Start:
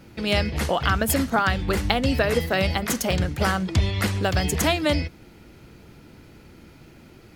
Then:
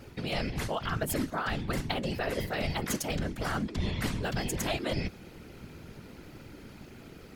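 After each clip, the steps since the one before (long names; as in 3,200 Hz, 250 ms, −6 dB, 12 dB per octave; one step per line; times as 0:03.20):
reversed playback
downward compressor 6 to 1, threshold −29 dBFS, peak gain reduction 13.5 dB
reversed playback
random phases in short frames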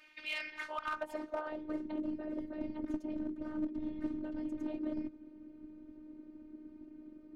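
band-pass filter sweep 2,400 Hz → 240 Hz, 0:00.33–0:02.08
asymmetric clip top −33.5 dBFS
phases set to zero 307 Hz
level +4 dB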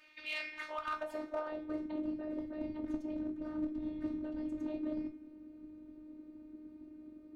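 convolution reverb, pre-delay 7 ms, DRR 5.5 dB
level −2 dB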